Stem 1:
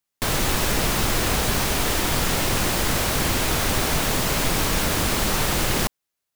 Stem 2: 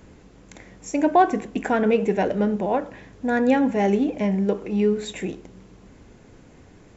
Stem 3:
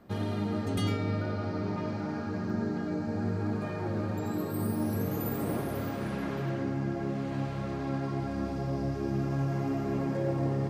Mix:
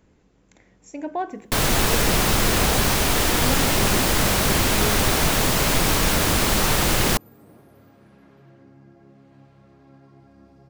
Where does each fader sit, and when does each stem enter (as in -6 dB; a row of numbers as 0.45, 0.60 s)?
+2.5, -11.0, -18.5 dB; 1.30, 0.00, 2.00 s